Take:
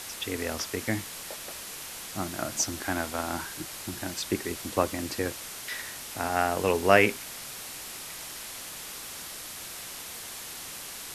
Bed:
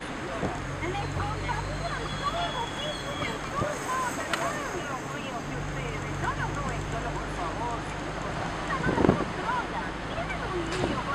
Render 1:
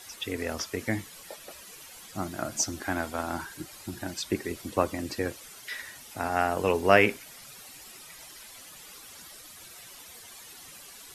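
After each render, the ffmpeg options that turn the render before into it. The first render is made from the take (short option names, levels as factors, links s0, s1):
-af "afftdn=nr=12:nf=-41"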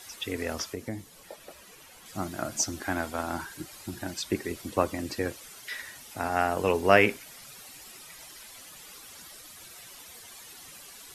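-filter_complex "[0:a]asettb=1/sr,asplit=3[s0][s1][s2];[s0]atrim=end=0.724[s3];[s1]atrim=start=0.72:end=2.06,asetpts=PTS-STARTPTS,afade=t=in:d=0.004:c=qsin,afade=t=out:st=1.336:d=0.004:c=qsin,acrossover=split=930|3200[s4][s5][s6];[s4]acompressor=threshold=0.0251:ratio=4[s7];[s5]acompressor=threshold=0.002:ratio=4[s8];[s6]acompressor=threshold=0.00224:ratio=4[s9];[s7][s8][s9]amix=inputs=3:normalize=0[s10];[s2]atrim=start=2.056[s11];[s3][s10]acrossfade=d=0.004:c1=hsin:c2=qsin[s12];[s12][s11]acrossfade=d=0.004:c1=qsin:c2=hsin"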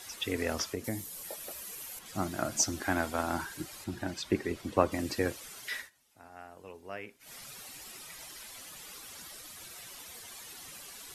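-filter_complex "[0:a]asettb=1/sr,asplit=3[s0][s1][s2];[s0]atrim=end=0.844[s3];[s1]atrim=start=0.84:end=1.99,asetpts=PTS-STARTPTS,afade=t=in:d=0.004:c=qsin,afade=t=out:st=1.146:d=0.004:c=qsin,aemphasis=mode=production:type=50fm[s4];[s2]atrim=start=1.986[s5];[s3][s4]acrossfade=d=0.004:c1=hsin:c2=qsin[s6];[s6][s5]acrossfade=d=0.004:c1=qsin:c2=hsin,asettb=1/sr,asplit=3[s7][s8][s9];[s7]atrim=end=3.844[s10];[s8]atrim=start=3.84:end=4.92,asetpts=PTS-STARTPTS,afade=t=in:d=0.004:c=qsin,afade=t=out:st=1.076:d=0.004:c=qsin,lowpass=f=3300:p=1[s11];[s9]atrim=start=4.916[s12];[s10][s11]acrossfade=d=0.004:c1=hsin:c2=qsin[s13];[s13][s12]acrossfade=d=0.004:c1=qsin:c2=hsin,asplit=3[s14][s15][s16];[s14]atrim=end=5.9,asetpts=PTS-STARTPTS,afade=t=out:st=5.76:d=0.14:silence=0.0707946[s17];[s15]atrim=start=5.9:end=7.19,asetpts=PTS-STARTPTS,volume=0.0708[s18];[s16]atrim=start=7.19,asetpts=PTS-STARTPTS,afade=t=in:d=0.14:silence=0.0707946[s19];[s17][s18][s19]concat=n=3:v=0:a=1"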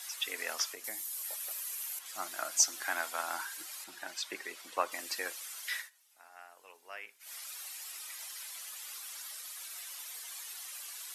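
-af "highpass=970,highshelf=f=7100:g=5.5"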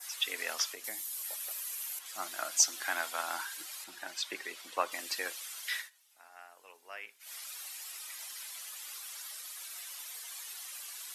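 -af "highpass=79,adynamicequalizer=threshold=0.00355:dfrequency=3400:dqfactor=1.5:tfrequency=3400:tqfactor=1.5:attack=5:release=100:ratio=0.375:range=2:mode=boostabove:tftype=bell"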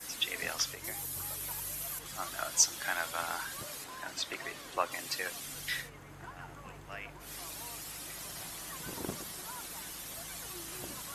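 -filter_complex "[1:a]volume=0.119[s0];[0:a][s0]amix=inputs=2:normalize=0"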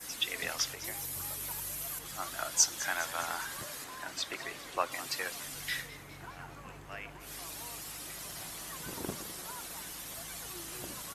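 -filter_complex "[0:a]asplit=7[s0][s1][s2][s3][s4][s5][s6];[s1]adelay=205,afreqshift=130,volume=0.168[s7];[s2]adelay=410,afreqshift=260,volume=0.102[s8];[s3]adelay=615,afreqshift=390,volume=0.0624[s9];[s4]adelay=820,afreqshift=520,volume=0.038[s10];[s5]adelay=1025,afreqshift=650,volume=0.0232[s11];[s6]adelay=1230,afreqshift=780,volume=0.0141[s12];[s0][s7][s8][s9][s10][s11][s12]amix=inputs=7:normalize=0"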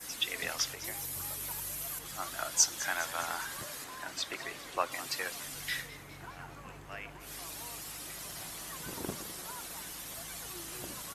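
-af anull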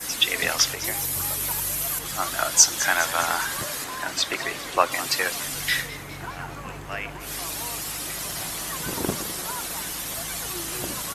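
-af "volume=3.98,alimiter=limit=0.891:level=0:latency=1"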